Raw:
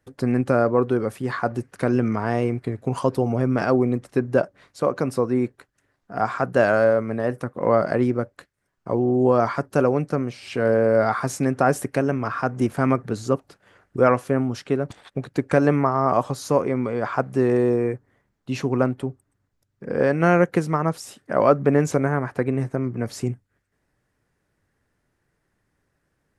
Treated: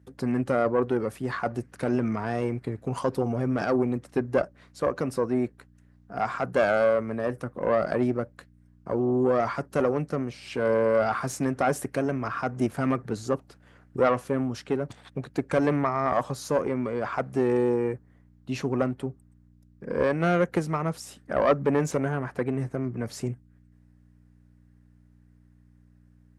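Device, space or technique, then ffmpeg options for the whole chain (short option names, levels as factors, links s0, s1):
valve amplifier with mains hum: -af "aeval=exprs='(tanh(3.16*val(0)+0.55)-tanh(0.55))/3.16':c=same,aeval=exprs='val(0)+0.00251*(sin(2*PI*60*n/s)+sin(2*PI*2*60*n/s)/2+sin(2*PI*3*60*n/s)/3+sin(2*PI*4*60*n/s)/4+sin(2*PI*5*60*n/s)/5)':c=same,highpass=71,volume=0.891"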